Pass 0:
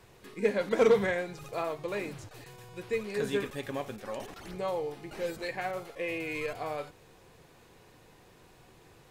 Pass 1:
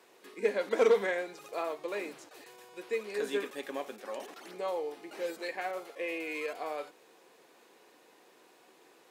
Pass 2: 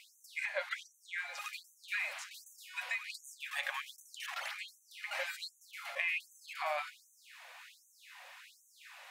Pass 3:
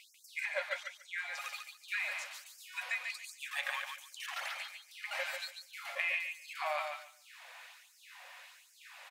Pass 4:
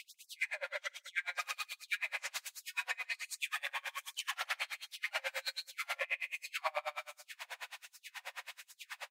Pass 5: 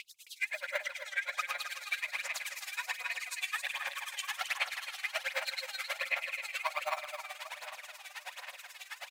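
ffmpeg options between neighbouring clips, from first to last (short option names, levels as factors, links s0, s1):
-af "highpass=f=270:w=0.5412,highpass=f=270:w=1.3066,volume=0.841"
-af "equalizer=f=2200:w=0.84:g=9.5,acompressor=threshold=0.02:ratio=10,afftfilt=real='re*gte(b*sr/1024,510*pow(6000/510,0.5+0.5*sin(2*PI*1.3*pts/sr)))':imag='im*gte(b*sr/1024,510*pow(6000/510,0.5+0.5*sin(2*PI*1.3*pts/sr)))':win_size=1024:overlap=0.75,volume=1.68"
-af "aecho=1:1:143|286|429:0.531|0.0956|0.0172"
-filter_complex "[0:a]acompressor=threshold=0.00891:ratio=6,asplit=2[s0][s1];[s1]adelay=47,volume=0.794[s2];[s0][s2]amix=inputs=2:normalize=0,aeval=exprs='val(0)*pow(10,-33*(0.5-0.5*cos(2*PI*9.3*n/s))/20)':c=same,volume=3.16"
-filter_complex "[0:a]aecho=1:1:266|532|798|1064|1330|1596|1862|2128:0.501|0.291|0.169|0.0978|0.0567|0.0329|0.0191|0.0111,aphaser=in_gain=1:out_gain=1:delay=2.6:decay=0.57:speed=1.3:type=sinusoidal,acrossover=split=730|5600[s0][s1][s2];[s0]acrusher=samples=11:mix=1:aa=0.000001:lfo=1:lforange=11:lforate=0.59[s3];[s3][s1][s2]amix=inputs=3:normalize=0"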